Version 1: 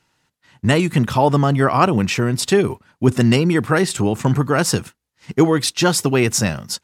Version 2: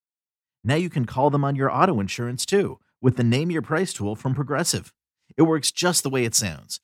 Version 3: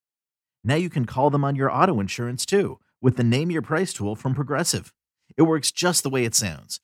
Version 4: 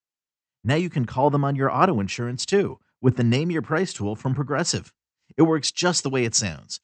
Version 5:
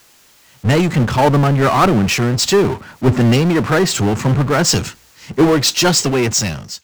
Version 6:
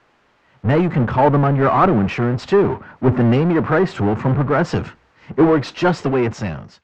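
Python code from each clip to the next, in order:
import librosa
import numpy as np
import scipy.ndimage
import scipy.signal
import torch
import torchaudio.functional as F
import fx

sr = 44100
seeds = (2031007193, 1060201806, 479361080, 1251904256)

y1 = fx.band_widen(x, sr, depth_pct=100)
y1 = F.gain(torch.from_numpy(y1), -6.0).numpy()
y2 = fx.notch(y1, sr, hz=3600.0, q=17.0)
y3 = scipy.signal.sosfilt(scipy.signal.butter(12, 7900.0, 'lowpass', fs=sr, output='sos'), y2)
y4 = fx.fade_out_tail(y3, sr, length_s=1.0)
y4 = fx.power_curve(y4, sr, exponent=0.5)
y5 = scipy.signal.sosfilt(scipy.signal.butter(2, 1600.0, 'lowpass', fs=sr, output='sos'), y4)
y5 = fx.low_shelf(y5, sr, hz=210.0, db=-4.0)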